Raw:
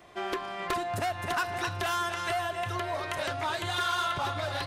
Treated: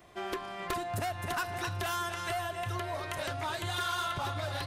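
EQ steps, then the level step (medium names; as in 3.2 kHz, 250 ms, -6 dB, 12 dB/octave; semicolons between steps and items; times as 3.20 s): bass shelf 200 Hz +6.5 dB; treble shelf 9.1 kHz +9 dB; -4.5 dB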